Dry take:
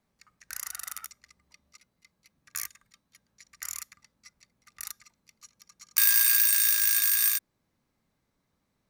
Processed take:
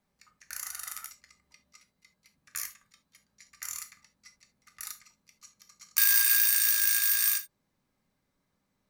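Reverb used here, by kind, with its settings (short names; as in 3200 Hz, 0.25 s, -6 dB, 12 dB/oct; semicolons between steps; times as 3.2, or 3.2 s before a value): non-linear reverb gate 0.1 s falling, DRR 5 dB; gain -2 dB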